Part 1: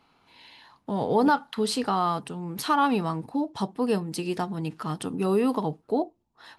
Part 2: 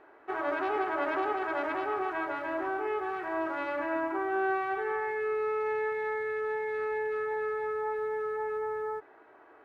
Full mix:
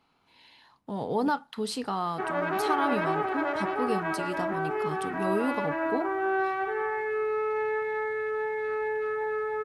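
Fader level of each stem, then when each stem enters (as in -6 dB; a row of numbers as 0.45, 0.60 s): -5.5, +2.0 dB; 0.00, 1.90 s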